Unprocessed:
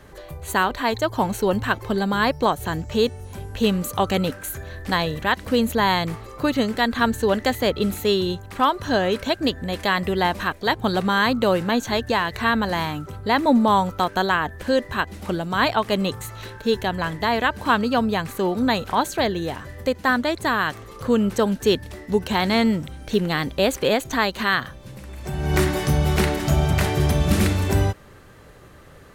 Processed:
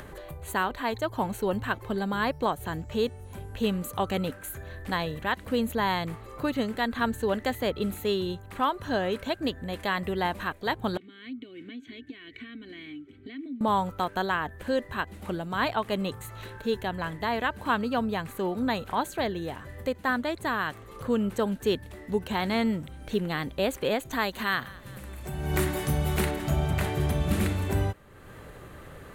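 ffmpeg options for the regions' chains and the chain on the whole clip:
ffmpeg -i in.wav -filter_complex "[0:a]asettb=1/sr,asplit=3[link_01][link_02][link_03];[link_01]atrim=end=10.974[link_04];[link_02]atrim=start=10.97:end=13.61,asetpts=PTS-STARTPTS,afade=type=in:duration=0.004:curve=qsin,afade=type=out:start_time=2.636:duration=0.004:curve=qsin,acompressor=threshold=-21dB:ratio=4:attack=3.2:release=140:knee=1:detection=peak,asplit=3[link_05][link_06][link_07];[link_05]bandpass=frequency=270:width_type=q:width=8,volume=0dB[link_08];[link_06]bandpass=frequency=2290:width_type=q:width=8,volume=-6dB[link_09];[link_07]bandpass=frequency=3010:width_type=q:width=8,volume=-9dB[link_10];[link_08][link_09][link_10]amix=inputs=3:normalize=0,aecho=1:1:2.7:0.53,atrim=end_sample=116424[link_11];[link_03]atrim=start=13.606[link_12];[link_04][link_11]acrossfade=duration=0.004:curve1=hsin:curve2=qsin[link_13];[link_13][link_12]acrossfade=duration=0.004:curve1=qsin:curve2=hsin,asettb=1/sr,asplit=3[link_14][link_15][link_16];[link_14]atrim=end=24.114[link_17];[link_15]atrim=start=24.11:end=26.31,asetpts=PTS-STARTPTS,afade=type=in:duration=0.004:curve=qsin,afade=type=out:start_time=2.196:duration=0.004:curve=qsin,highshelf=frequency=6400:gain=7.5,aecho=1:1:202|404|606|808:0.0891|0.0437|0.0214|0.0105,atrim=end_sample=97020[link_18];[link_16]atrim=start=26.306[link_19];[link_17][link_18]acrossfade=duration=0.004:curve1=hsin:curve2=qsin[link_20];[link_20][link_19]acrossfade=duration=0.004:curve1=qsin:curve2=hsin,equalizer=frequency=5400:width=1.9:gain=-8,acompressor=mode=upward:threshold=-28dB:ratio=2.5,volume=-7dB" out.wav

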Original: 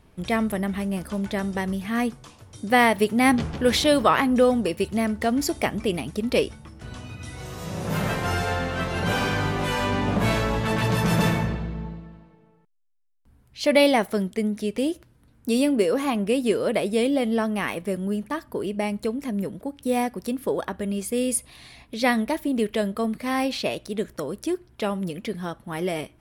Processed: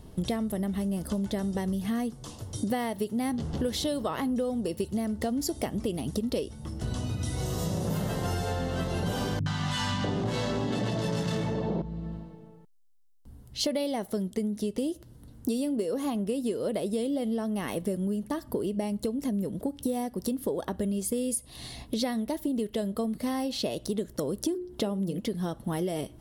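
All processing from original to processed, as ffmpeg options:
ffmpeg -i in.wav -filter_complex "[0:a]asettb=1/sr,asplit=3[link_01][link_02][link_03];[link_01]atrim=end=9.394[link_04];[link_02]atrim=start=9.39:end=11.82,asetpts=PTS-STARTPTS,afade=type=in:duration=0.004:curve=qsin,afade=type=out:start_time=2.426:duration=0.004:curve=qsin,aeval=exprs='0.282*sin(PI/2*1.78*val(0)/0.282)':channel_layout=same,highpass=130,lowpass=6400,acrossover=split=200|880[link_05][link_06][link_07];[link_07]adelay=70[link_08];[link_06]adelay=650[link_09];[link_05][link_09][link_08]amix=inputs=3:normalize=0,atrim=end_sample=107163[link_10];[link_03]atrim=start=11.816[link_11];[link_04][link_10]acrossfade=duration=0.004:curve1=hsin:curve2=qsin[link_12];[link_12][link_11]acrossfade=duration=0.004:curve1=qsin:curve2=hsin,asettb=1/sr,asplit=3[link_13][link_14][link_15];[link_13]atrim=end=24.434[link_16];[link_14]atrim=start=24.43:end=25.2,asetpts=PTS-STARTPTS,afade=type=in:duration=0.004:curve=qsin,afade=type=out:start_time=0.766:duration=0.004:curve=qsin,equalizer=frequency=270:width=0.41:gain=5,bandreject=frequency=60:width_type=h:width=6,bandreject=frequency=120:width_type=h:width=6,bandreject=frequency=180:width_type=h:width=6,bandreject=frequency=240:width_type=h:width=6,bandreject=frequency=300:width_type=h:width=6,bandreject=frequency=360:width_type=h:width=6,bandreject=frequency=420:width_type=h:width=6,bandreject=frequency=480:width_type=h:width=6,bandreject=frequency=540:width_type=h:width=6[link_17];[link_15]atrim=start=25.196[link_18];[link_16][link_17]acrossfade=duration=0.004:curve1=hsin:curve2=qsin[link_19];[link_19][link_18]acrossfade=duration=0.004:curve1=qsin:curve2=hsin,equalizer=frequency=1600:width_type=o:width=1.8:gain=-10,bandreject=frequency=2400:width=5.5,acompressor=threshold=-35dB:ratio=12,volume=8.5dB" out.wav

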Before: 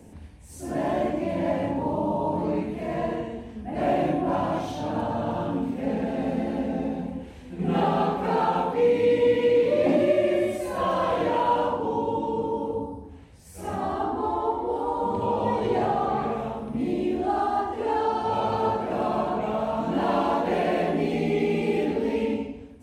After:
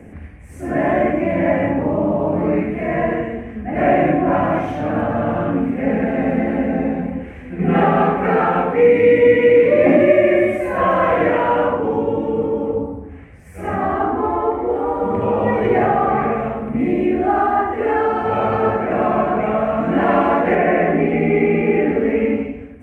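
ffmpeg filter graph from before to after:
ffmpeg -i in.wav -filter_complex "[0:a]asettb=1/sr,asplit=3[link_01][link_02][link_03];[link_01]atrim=end=20.554[link_04];[link_02]atrim=start=20.55:end=22.45,asetpts=PTS-STARTPTS,afade=type=in:duration=0.004:curve=qsin,afade=type=out:start_time=1.896:duration=0.004:curve=qsin,acrossover=split=2800[link_05][link_06];[link_06]acompressor=threshold=-59dB:ratio=4:attack=1:release=60[link_07];[link_05][link_07]amix=inputs=2:normalize=0,aeval=exprs='sgn(val(0))*max(abs(val(0))-0.00251,0)':channel_layout=same[link_08];[link_03]atrim=start=22.446[link_09];[link_04][link_08]acrossfade=duration=0.004:curve1=hsin:curve2=qsin[link_10];[link_10][link_09]acrossfade=duration=0.004:curve1=qsin:curve2=hsin,highshelf=frequency=2900:width_type=q:width=3:gain=-11.5,bandreject=frequency=920:width=5.7,volume=8.5dB" out.wav

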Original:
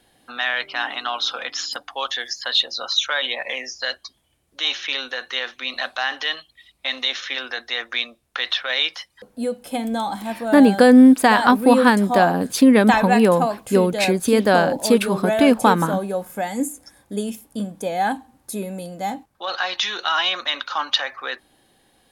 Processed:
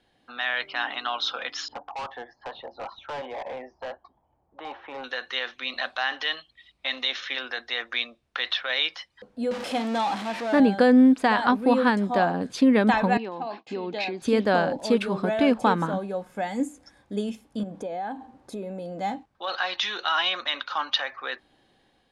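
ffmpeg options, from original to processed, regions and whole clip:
ffmpeg -i in.wav -filter_complex "[0:a]asettb=1/sr,asplit=3[link_01][link_02][link_03];[link_01]atrim=end=1.684[link_04];[link_02]atrim=start=1.68:end=5.04,asetpts=PTS-STARTPTS,afade=type=in:duration=0.004:curve=qsin,afade=type=out:start_time=3.356:duration=0.004:curve=qsin,lowpass=frequency=870:width_type=q:width=4.3,volume=28dB,asoftclip=hard,volume=-28dB[link_05];[link_03]atrim=start=5.036[link_06];[link_04][link_05]acrossfade=duration=0.004:curve1=hsin:curve2=qsin[link_07];[link_07][link_06]acrossfade=duration=0.004:curve1=qsin:curve2=hsin,asettb=1/sr,asplit=3[link_08][link_09][link_10];[link_08]atrim=end=9.514[link_11];[link_09]atrim=start=9.51:end=10.6,asetpts=PTS-STARTPTS,afade=type=in:duration=0.004:curve=qsin,afade=type=out:start_time=1.086:duration=0.004:curve=qsin,aeval=exprs='val(0)+0.5*0.075*sgn(val(0))':channel_layout=same,highpass=frequency=310:poles=1,acrusher=bits=8:mix=0:aa=0.5[link_12];[link_10]atrim=start=10.596[link_13];[link_11][link_12]acrossfade=duration=0.004:curve1=hsin:curve2=qsin[link_14];[link_14][link_13]acrossfade=duration=0.004:curve1=qsin:curve2=hsin,asettb=1/sr,asplit=3[link_15][link_16][link_17];[link_15]atrim=end=13.174[link_18];[link_16]atrim=start=13.17:end=14.22,asetpts=PTS-STARTPTS,afade=type=in:duration=0.004:curve=qsin,afade=type=out:start_time=1.046:duration=0.004:curve=qsin,acompressor=threshold=-21dB:ratio=12:attack=3.2:release=140:knee=1:detection=peak,agate=range=-33dB:threshold=-37dB:ratio=3:release=100:detection=peak,highpass=270,equalizer=frequency=330:width_type=q:width=4:gain=4,equalizer=frequency=540:width_type=q:width=4:gain=-7,equalizer=frequency=830:width_type=q:width=4:gain=5,equalizer=frequency=1400:width_type=q:width=4:gain=-5,equalizer=frequency=2600:width_type=q:width=4:gain=4,equalizer=frequency=4100:width_type=q:width=4:gain=4,lowpass=frequency=5600:width=0.5412,lowpass=frequency=5600:width=1.3066[link_19];[link_17]atrim=start=14.216[link_20];[link_18][link_19]acrossfade=duration=0.004:curve1=hsin:curve2=qsin[link_21];[link_21][link_20]acrossfade=duration=0.004:curve1=qsin:curve2=hsin,asettb=1/sr,asplit=3[link_22][link_23][link_24];[link_22]atrim=end=17.634[link_25];[link_23]atrim=start=17.63:end=19,asetpts=PTS-STARTPTS,afade=type=in:duration=0.004:curve=qsin,afade=type=out:start_time=1.366:duration=0.004:curve=qsin,equalizer=frequency=490:width=0.45:gain=9.5,acompressor=threshold=-29dB:ratio=4:attack=3.2:release=140:knee=1:detection=peak[link_26];[link_24]atrim=start=18.996[link_27];[link_25][link_26]acrossfade=duration=0.004:curve1=hsin:curve2=qsin[link_28];[link_28][link_27]acrossfade=duration=0.004:curve1=qsin:curve2=hsin,lowpass=4800,dynaudnorm=framelen=280:gausssize=3:maxgain=4dB,volume=-7dB" out.wav

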